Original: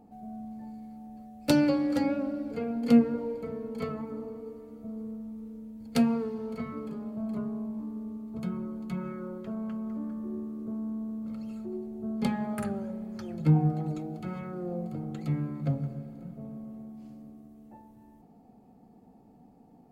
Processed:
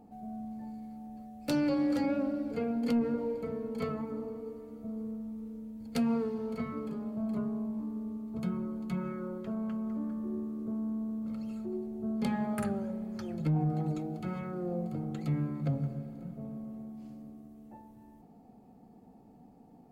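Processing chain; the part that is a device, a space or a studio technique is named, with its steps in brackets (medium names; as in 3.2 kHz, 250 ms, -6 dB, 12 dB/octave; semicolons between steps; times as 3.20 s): soft clipper into limiter (saturation -14 dBFS, distortion -19 dB; peak limiter -22.5 dBFS, peak gain reduction 7.5 dB)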